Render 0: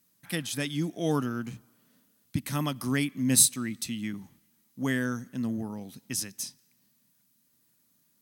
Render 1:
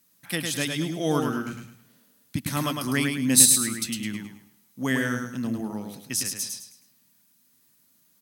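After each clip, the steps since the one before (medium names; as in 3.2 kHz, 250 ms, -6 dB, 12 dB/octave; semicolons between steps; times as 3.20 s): bass shelf 340 Hz -5 dB; on a send: feedback delay 105 ms, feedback 33%, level -4.5 dB; on the sum: trim +4.5 dB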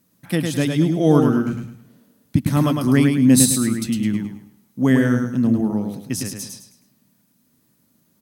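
tilt shelf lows +7.5 dB, about 900 Hz; trim +5 dB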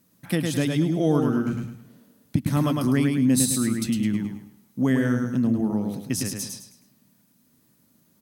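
compression 2:1, threshold -22 dBFS, peak gain reduction 7.5 dB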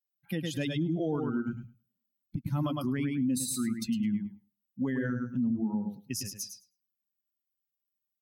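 expander on every frequency bin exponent 2; peak limiter -23 dBFS, peak gain reduction 11 dB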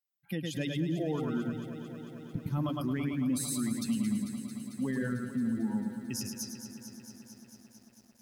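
bit-crushed delay 223 ms, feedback 80%, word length 10-bit, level -11 dB; trim -2 dB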